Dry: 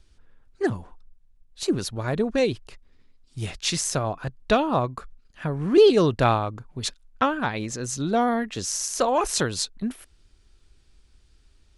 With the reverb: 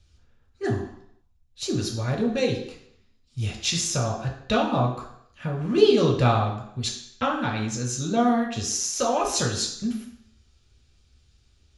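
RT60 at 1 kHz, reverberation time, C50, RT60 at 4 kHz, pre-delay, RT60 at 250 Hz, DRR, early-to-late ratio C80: 0.70 s, 0.65 s, 6.5 dB, 0.70 s, 3 ms, 0.65 s, −1.0 dB, 9.5 dB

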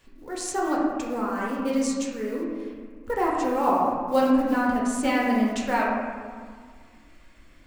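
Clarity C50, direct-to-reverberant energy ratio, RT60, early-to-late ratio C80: 0.0 dB, −4.0 dB, 1.8 s, 2.5 dB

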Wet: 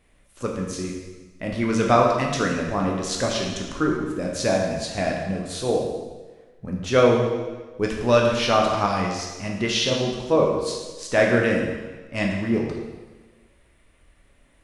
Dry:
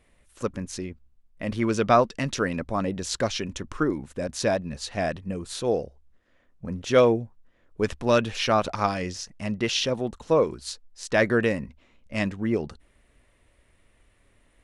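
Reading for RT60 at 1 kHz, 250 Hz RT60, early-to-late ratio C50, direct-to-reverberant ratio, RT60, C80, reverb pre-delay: 1.3 s, 1.3 s, 3.0 dB, −1.0 dB, 1.3 s, 4.5 dB, 6 ms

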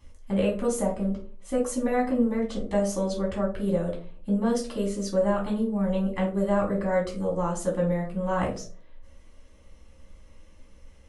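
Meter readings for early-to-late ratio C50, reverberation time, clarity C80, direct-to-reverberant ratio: 8.0 dB, 0.45 s, 14.0 dB, −3.5 dB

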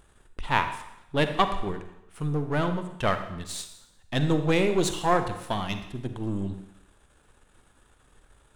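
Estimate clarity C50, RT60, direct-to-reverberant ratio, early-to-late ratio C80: 9.0 dB, 0.85 s, 8.0 dB, 11.0 dB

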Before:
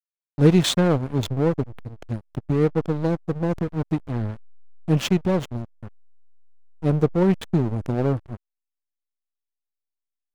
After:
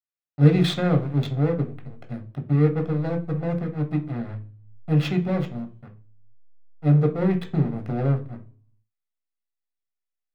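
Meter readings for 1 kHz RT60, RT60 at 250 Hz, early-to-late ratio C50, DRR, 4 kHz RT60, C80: 0.40 s, 0.65 s, 13.5 dB, 3.5 dB, 0.60 s, 20.0 dB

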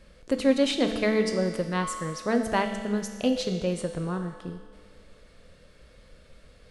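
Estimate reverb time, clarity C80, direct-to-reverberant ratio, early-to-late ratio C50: 1.8 s, 8.5 dB, 5.0 dB, 7.0 dB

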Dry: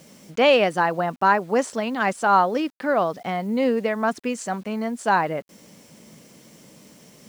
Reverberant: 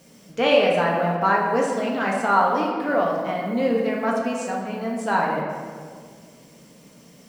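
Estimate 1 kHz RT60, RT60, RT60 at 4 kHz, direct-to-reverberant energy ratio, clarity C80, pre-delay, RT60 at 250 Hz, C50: 1.7 s, 1.9 s, 1.1 s, −2.5 dB, 3.5 dB, 4 ms, 2.4 s, 1.5 dB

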